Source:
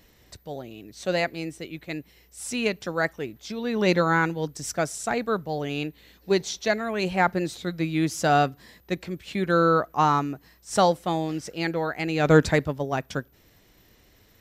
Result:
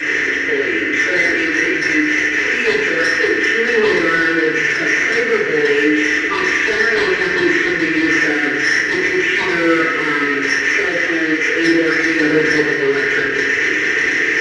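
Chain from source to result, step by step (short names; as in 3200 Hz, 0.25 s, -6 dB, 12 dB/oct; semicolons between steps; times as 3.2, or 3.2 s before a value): delta modulation 16 kbps, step -28.5 dBFS; tilt +4 dB/oct; hard clip -32 dBFS, distortion -5 dB; double band-pass 840 Hz, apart 2.2 oct; sine folder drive 9 dB, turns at -28.5 dBFS; on a send: thinning echo 0.213 s, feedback 81%, high-pass 1000 Hz, level -11.5 dB; on the sum: FDN reverb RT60 0.85 s, low-frequency decay 1.4×, high-frequency decay 0.6×, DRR -8 dB; gain +9 dB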